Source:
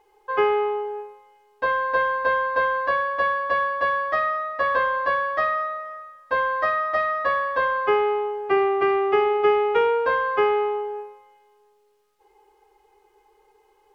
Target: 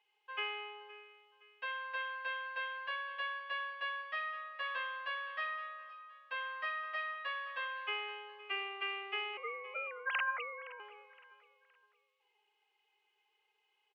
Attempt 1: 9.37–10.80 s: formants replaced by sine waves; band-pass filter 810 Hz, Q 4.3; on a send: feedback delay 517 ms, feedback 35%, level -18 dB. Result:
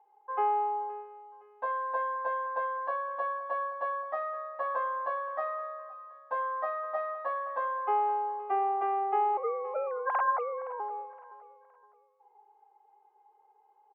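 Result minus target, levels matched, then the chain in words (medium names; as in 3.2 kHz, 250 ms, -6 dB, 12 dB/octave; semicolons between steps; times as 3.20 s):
2 kHz band -10.5 dB
9.37–10.80 s: formants replaced by sine waves; band-pass filter 2.8 kHz, Q 4.3; on a send: feedback delay 517 ms, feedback 35%, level -18 dB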